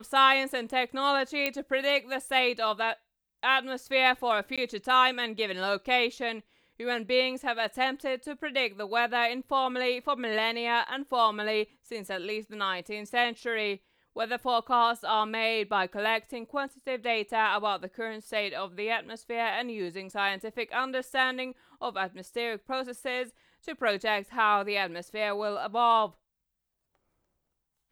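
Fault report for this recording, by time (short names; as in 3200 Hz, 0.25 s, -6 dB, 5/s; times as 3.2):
1.46 pop -12 dBFS
4.56–4.58 gap 16 ms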